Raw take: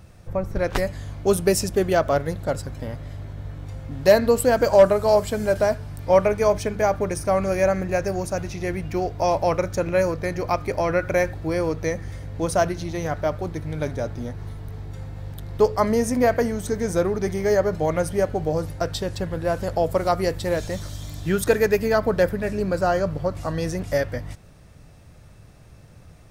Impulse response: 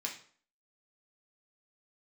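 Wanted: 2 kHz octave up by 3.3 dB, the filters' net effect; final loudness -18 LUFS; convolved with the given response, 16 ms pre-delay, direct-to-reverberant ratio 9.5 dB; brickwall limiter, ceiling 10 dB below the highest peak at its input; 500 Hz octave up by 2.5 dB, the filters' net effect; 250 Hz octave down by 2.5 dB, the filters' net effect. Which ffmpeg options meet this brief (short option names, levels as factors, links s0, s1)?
-filter_complex "[0:a]equalizer=f=250:t=o:g=-5.5,equalizer=f=500:t=o:g=4,equalizer=f=2000:t=o:g=4,alimiter=limit=0.251:level=0:latency=1,asplit=2[s0][s1];[1:a]atrim=start_sample=2205,adelay=16[s2];[s1][s2]afir=irnorm=-1:irlink=0,volume=0.282[s3];[s0][s3]amix=inputs=2:normalize=0,volume=1.88"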